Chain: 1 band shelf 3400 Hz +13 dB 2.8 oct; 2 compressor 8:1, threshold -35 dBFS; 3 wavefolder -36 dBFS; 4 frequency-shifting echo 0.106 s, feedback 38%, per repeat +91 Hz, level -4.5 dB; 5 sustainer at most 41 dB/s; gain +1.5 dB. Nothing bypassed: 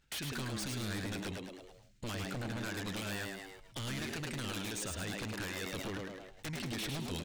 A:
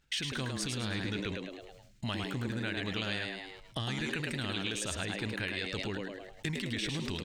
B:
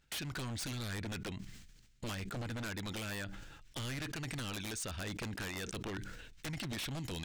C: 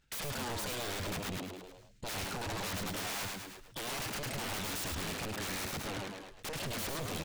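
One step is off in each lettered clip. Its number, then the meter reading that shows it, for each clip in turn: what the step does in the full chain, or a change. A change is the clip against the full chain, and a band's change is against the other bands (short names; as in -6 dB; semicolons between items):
3, distortion -1 dB; 4, crest factor change +3.0 dB; 2, mean gain reduction 9.0 dB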